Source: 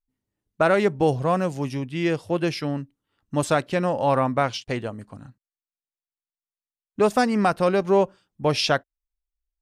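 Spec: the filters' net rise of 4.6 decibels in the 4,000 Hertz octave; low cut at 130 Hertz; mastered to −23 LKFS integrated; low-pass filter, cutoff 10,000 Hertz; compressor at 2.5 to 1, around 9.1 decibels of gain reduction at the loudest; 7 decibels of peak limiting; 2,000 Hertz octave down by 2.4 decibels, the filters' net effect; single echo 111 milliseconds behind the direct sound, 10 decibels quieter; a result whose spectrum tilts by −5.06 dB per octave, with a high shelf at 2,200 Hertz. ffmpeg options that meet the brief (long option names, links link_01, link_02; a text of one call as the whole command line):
ffmpeg -i in.wav -af "highpass=130,lowpass=10000,equalizer=frequency=2000:width_type=o:gain=-6.5,highshelf=frequency=2200:gain=3.5,equalizer=frequency=4000:width_type=o:gain=4.5,acompressor=threshold=-29dB:ratio=2.5,alimiter=limit=-21.5dB:level=0:latency=1,aecho=1:1:111:0.316,volume=9.5dB" out.wav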